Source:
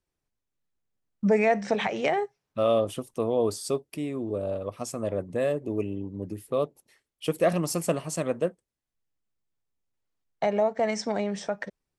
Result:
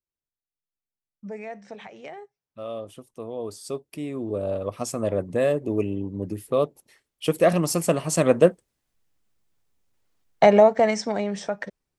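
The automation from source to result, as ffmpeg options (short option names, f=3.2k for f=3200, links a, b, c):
-af "volume=11dB,afade=t=in:st=2.17:d=1.32:silence=0.446684,afade=t=in:st=3.49:d=1.25:silence=0.251189,afade=t=in:st=7.95:d=0.45:silence=0.473151,afade=t=out:st=10.51:d=0.51:silence=0.354813"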